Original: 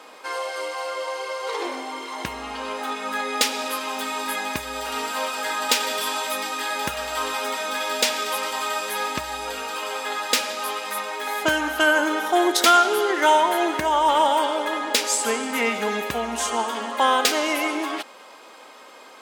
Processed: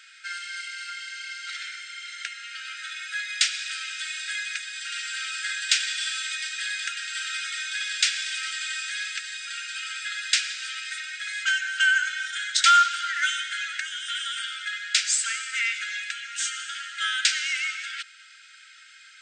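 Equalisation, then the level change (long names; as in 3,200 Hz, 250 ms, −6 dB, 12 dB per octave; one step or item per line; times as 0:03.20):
linear-phase brick-wall band-pass 1,300–8,900 Hz
0.0 dB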